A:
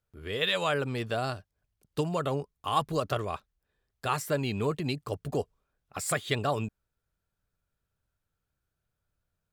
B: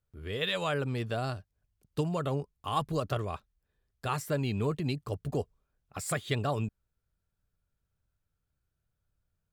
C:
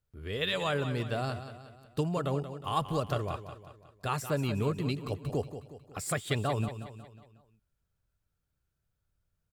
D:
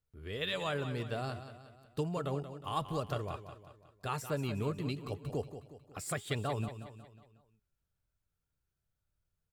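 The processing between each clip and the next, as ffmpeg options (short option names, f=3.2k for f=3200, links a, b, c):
-af "lowshelf=f=220:g=7.5,volume=-4dB"
-af "aecho=1:1:182|364|546|728|910:0.282|0.138|0.0677|0.0332|0.0162"
-af "flanger=delay=2.1:depth=1.3:regen=90:speed=0.94:shape=sinusoidal"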